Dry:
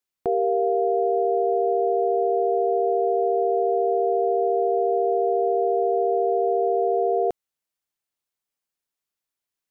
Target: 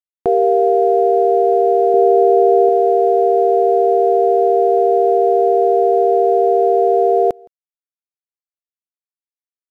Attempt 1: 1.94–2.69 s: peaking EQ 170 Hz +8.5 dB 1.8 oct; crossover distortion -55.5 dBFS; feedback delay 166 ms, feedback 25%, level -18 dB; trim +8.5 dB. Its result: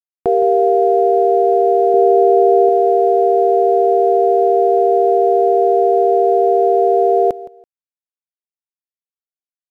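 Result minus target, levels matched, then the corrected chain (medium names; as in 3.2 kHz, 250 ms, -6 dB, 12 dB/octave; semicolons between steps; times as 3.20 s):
echo-to-direct +10.5 dB
1.94–2.69 s: peaking EQ 170 Hz +8.5 dB 1.8 oct; crossover distortion -55.5 dBFS; feedback delay 166 ms, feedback 25%, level -28 dB; trim +8.5 dB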